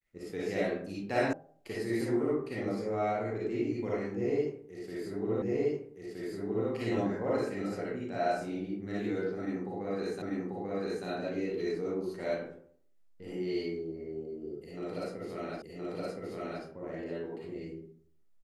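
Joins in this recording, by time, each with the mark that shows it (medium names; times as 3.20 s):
1.33 s: sound stops dead
5.42 s: repeat of the last 1.27 s
10.22 s: repeat of the last 0.84 s
15.62 s: repeat of the last 1.02 s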